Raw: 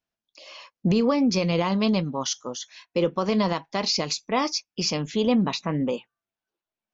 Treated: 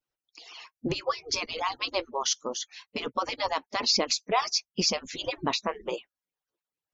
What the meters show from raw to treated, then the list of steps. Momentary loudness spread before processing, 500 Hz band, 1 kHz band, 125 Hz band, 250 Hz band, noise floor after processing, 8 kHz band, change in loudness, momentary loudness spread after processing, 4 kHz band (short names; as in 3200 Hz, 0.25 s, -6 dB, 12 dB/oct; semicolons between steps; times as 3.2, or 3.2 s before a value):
10 LU, -6.5 dB, -0.5 dB, -14.0 dB, -14.5 dB, under -85 dBFS, n/a, -4.5 dB, 12 LU, +0.5 dB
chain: median-filter separation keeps percussive; gain +1 dB